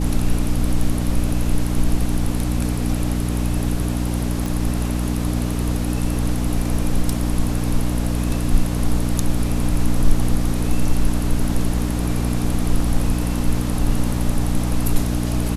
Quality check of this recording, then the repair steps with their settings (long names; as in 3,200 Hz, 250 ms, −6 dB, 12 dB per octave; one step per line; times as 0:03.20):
mains hum 60 Hz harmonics 5 −22 dBFS
0:04.46: click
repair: click removal
hum removal 60 Hz, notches 5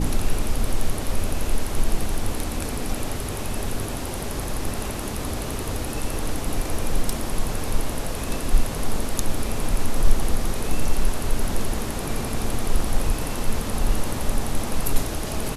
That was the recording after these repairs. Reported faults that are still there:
none of them is left